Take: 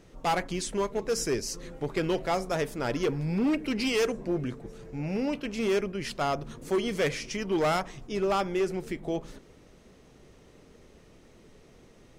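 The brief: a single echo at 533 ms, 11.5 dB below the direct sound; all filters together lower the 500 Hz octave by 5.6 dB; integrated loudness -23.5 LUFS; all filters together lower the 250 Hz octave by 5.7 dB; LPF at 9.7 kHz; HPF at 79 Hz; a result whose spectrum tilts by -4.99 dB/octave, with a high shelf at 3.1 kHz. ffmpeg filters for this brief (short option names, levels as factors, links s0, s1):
-af "highpass=79,lowpass=9700,equalizer=f=250:t=o:g=-6,equalizer=f=500:t=o:g=-5,highshelf=f=3100:g=-7,aecho=1:1:533:0.266,volume=3.35"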